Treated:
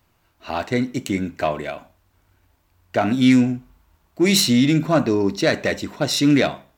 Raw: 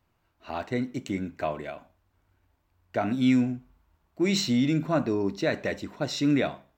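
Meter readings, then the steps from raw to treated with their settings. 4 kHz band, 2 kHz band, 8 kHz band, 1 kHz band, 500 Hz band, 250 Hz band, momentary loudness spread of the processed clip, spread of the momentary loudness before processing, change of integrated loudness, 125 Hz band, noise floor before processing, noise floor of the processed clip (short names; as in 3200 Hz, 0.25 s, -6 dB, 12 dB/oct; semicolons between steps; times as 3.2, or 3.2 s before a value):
+10.5 dB, +9.0 dB, +12.5 dB, +8.0 dB, +7.5 dB, +7.5 dB, 13 LU, 13 LU, +8.0 dB, +7.5 dB, -72 dBFS, -64 dBFS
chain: self-modulated delay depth 0.065 ms; high shelf 3400 Hz +7 dB; gain +7.5 dB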